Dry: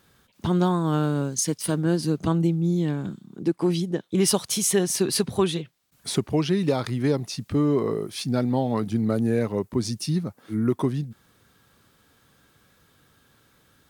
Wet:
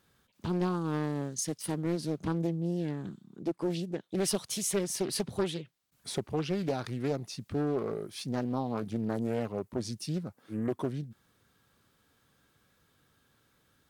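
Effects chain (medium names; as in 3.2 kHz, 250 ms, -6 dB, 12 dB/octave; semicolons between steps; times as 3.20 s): loudspeaker Doppler distortion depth 0.59 ms; trim -8.5 dB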